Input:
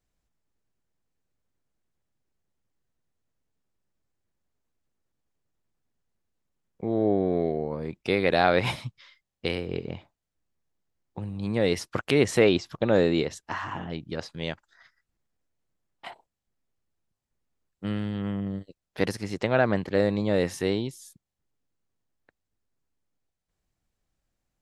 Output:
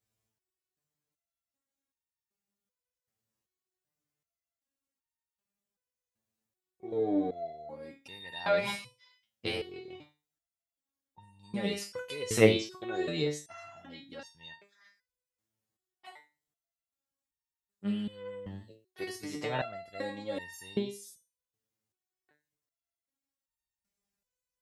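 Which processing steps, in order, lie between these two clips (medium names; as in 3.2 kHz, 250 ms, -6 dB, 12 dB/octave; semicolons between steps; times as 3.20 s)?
high-pass 54 Hz; treble shelf 5.2 kHz +8 dB; flutter echo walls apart 9.3 m, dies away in 0.23 s; resonator arpeggio 2.6 Hz 110–920 Hz; trim +5.5 dB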